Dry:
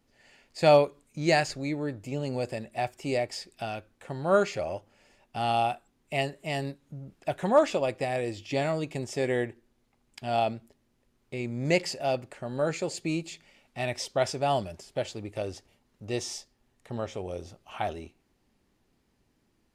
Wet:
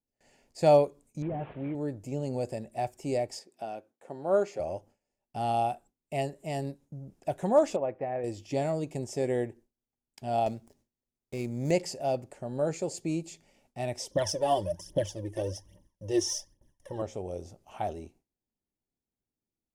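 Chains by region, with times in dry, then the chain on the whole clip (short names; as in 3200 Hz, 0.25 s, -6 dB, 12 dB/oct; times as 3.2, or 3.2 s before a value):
1.22–1.75 delta modulation 16 kbps, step -39 dBFS + HPF 58 Hz + compressor, threshold -28 dBFS
3.39–4.6 HPF 270 Hz + high shelf 2300 Hz -7.5 dB
7.76–8.24 LPF 1900 Hz 24 dB/oct + tilt +2 dB/oct
10.46–11.71 high shelf 2400 Hz +8 dB + running maximum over 3 samples
14.11–17.02 ripple EQ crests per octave 1.2, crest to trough 13 dB + phaser 1.2 Hz, delay 2.9 ms, feedback 69%
whole clip: gate with hold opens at -50 dBFS; band shelf 2200 Hz -9 dB 2.3 oct; gain -1 dB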